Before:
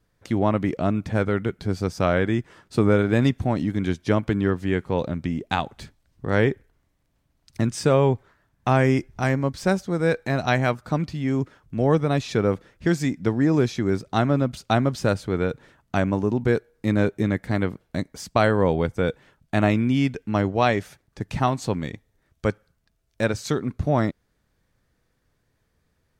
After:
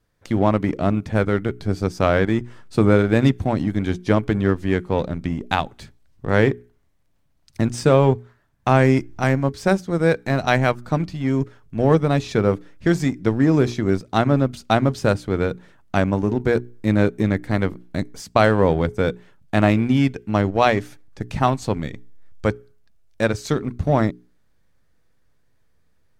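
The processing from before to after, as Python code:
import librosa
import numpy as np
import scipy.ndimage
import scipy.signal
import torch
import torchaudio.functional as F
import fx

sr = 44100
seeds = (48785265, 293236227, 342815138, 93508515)

p1 = fx.hum_notches(x, sr, base_hz=60, count=7)
p2 = fx.backlash(p1, sr, play_db=-20.0)
y = p1 + F.gain(torch.from_numpy(p2), -4.0).numpy()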